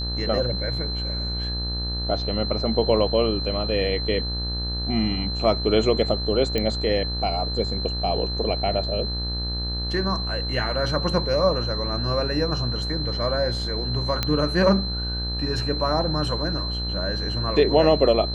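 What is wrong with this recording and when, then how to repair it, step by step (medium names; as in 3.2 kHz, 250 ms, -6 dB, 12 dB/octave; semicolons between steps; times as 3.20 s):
buzz 60 Hz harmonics 31 -29 dBFS
whine 4.1 kHz -29 dBFS
6.58 s: pop -11 dBFS
14.23 s: pop -8 dBFS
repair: de-click; band-stop 4.1 kHz, Q 30; de-hum 60 Hz, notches 31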